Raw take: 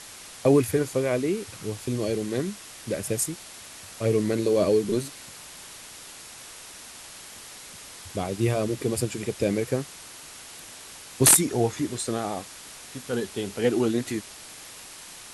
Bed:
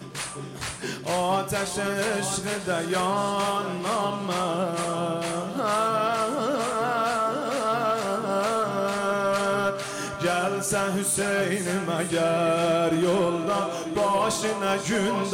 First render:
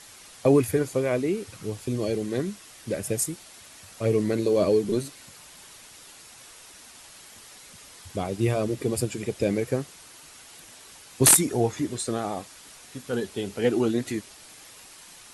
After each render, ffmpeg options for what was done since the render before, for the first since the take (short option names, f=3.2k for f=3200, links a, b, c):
-af "afftdn=nr=6:nf=-44"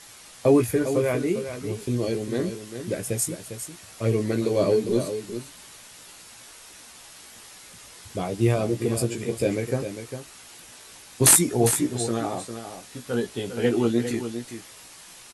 -filter_complex "[0:a]asplit=2[a][b];[b]adelay=17,volume=-5.5dB[c];[a][c]amix=inputs=2:normalize=0,aecho=1:1:402:0.335"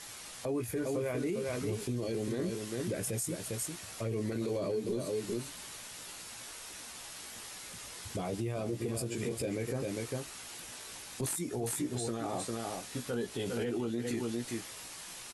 -af "acompressor=threshold=-28dB:ratio=12,alimiter=level_in=2dB:limit=-24dB:level=0:latency=1:release=10,volume=-2dB"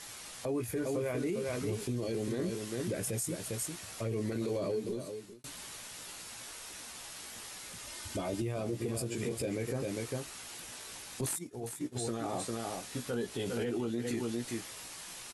-filter_complex "[0:a]asettb=1/sr,asplit=3[a][b][c];[a]atrim=end=7.874[d];[b]atrim=start=7.87:end=8.42,asetpts=PTS-STARTPTS,afade=t=in:d=0.004:c=qsin,afade=t=out:st=0.546:d=0.004:c=qsin,aecho=1:1:3.3:0.65,atrim=end_sample=24255[e];[c]atrim=start=8.416[f];[d][e]acrossfade=d=0.004:c1=hsin:c2=qsin[g];[g][f]acrossfade=d=0.004:c1=qsin:c2=hsin,asplit=3[h][i][j];[h]afade=t=out:st=11.37:d=0.02[k];[i]agate=range=-33dB:threshold=-30dB:ratio=3:release=100:detection=peak,afade=t=in:st=11.37:d=0.02,afade=t=out:st=11.95:d=0.02[l];[j]afade=t=in:st=11.95:d=0.02[m];[k][l][m]amix=inputs=3:normalize=0,asplit=2[n][o];[n]atrim=end=5.44,asetpts=PTS-STARTPTS,afade=t=out:st=4.73:d=0.71[p];[o]atrim=start=5.44,asetpts=PTS-STARTPTS,afade=t=in:d=0.004:c=hsin[q];[p][q]concat=n=2:v=0:a=1"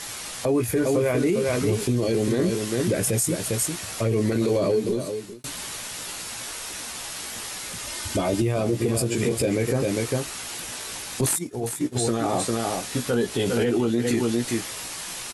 -af "volume=12dB"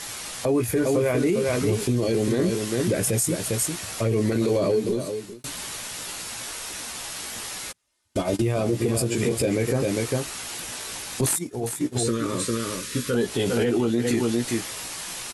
-filter_complex "[0:a]asplit=3[a][b][c];[a]afade=t=out:st=7.71:d=0.02[d];[b]agate=range=-41dB:threshold=-25dB:ratio=16:release=100:detection=peak,afade=t=in:st=7.71:d=0.02,afade=t=out:st=8.4:d=0.02[e];[c]afade=t=in:st=8.4:d=0.02[f];[d][e][f]amix=inputs=3:normalize=0,asettb=1/sr,asplit=3[g][h][i];[g]atrim=end=12.034[j];[h]atrim=start=12.03:end=13.15,asetpts=PTS-STARTPTS,afade=t=in:d=0.004:c=qsin,afade=t=out:st=1.116:d=0.004:c=qsin,asuperstop=centerf=750:order=4:qfactor=1.5[k];[i]atrim=start=13.146[l];[j][k]acrossfade=d=0.004:c1=hsin:c2=qsin[m];[m][l]acrossfade=d=0.004:c1=qsin:c2=hsin"